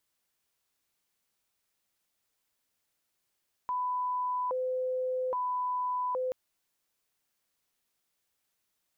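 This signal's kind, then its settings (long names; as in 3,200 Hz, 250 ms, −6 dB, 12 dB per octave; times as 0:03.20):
siren hi-lo 511–997 Hz 0.61 per second sine −28.5 dBFS 2.63 s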